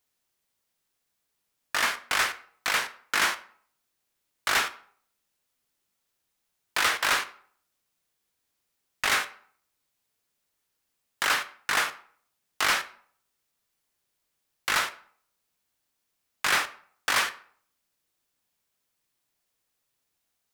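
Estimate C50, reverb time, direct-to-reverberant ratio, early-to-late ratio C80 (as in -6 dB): 16.0 dB, 0.55 s, 11.0 dB, 18.5 dB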